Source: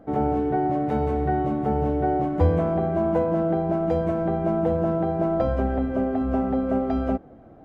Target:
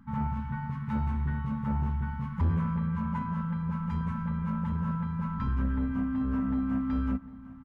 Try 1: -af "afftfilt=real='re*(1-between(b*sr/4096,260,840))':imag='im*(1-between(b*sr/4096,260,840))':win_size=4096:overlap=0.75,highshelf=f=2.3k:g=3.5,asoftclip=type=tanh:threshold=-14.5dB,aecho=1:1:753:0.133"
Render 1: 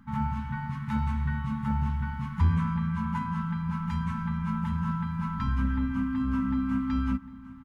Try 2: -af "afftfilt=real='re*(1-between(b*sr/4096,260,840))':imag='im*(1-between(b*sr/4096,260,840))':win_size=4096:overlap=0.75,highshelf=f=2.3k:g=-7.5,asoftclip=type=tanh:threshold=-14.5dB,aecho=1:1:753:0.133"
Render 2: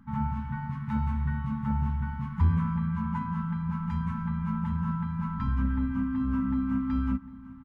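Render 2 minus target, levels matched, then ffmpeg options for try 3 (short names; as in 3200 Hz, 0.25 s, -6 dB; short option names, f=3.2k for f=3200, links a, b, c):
soft clip: distortion -8 dB
-af "afftfilt=real='re*(1-between(b*sr/4096,260,840))':imag='im*(1-between(b*sr/4096,260,840))':win_size=4096:overlap=0.75,highshelf=f=2.3k:g=-7.5,asoftclip=type=tanh:threshold=-21.5dB,aecho=1:1:753:0.133"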